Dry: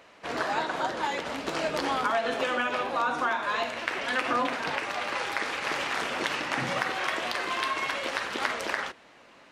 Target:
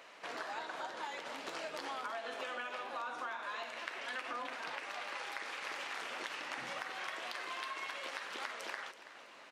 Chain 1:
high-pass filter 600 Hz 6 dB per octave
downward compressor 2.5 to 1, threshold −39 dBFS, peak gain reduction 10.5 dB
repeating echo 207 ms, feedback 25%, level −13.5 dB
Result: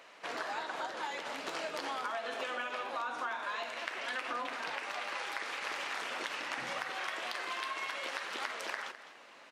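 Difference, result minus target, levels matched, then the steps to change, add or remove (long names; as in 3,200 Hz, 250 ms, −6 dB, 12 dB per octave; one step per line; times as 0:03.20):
echo 121 ms early; downward compressor: peak gain reduction −4 dB
change: downward compressor 2.5 to 1, threshold −45.5 dBFS, peak gain reduction 14.5 dB
change: repeating echo 328 ms, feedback 25%, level −13.5 dB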